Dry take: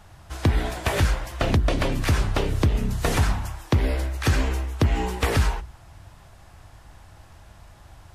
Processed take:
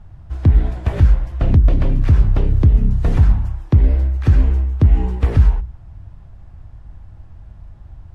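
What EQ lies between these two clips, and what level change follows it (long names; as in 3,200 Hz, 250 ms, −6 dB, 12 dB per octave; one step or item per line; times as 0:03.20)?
RIAA equalisation playback
parametric band 190 Hz +3 dB 1.8 octaves
−6.0 dB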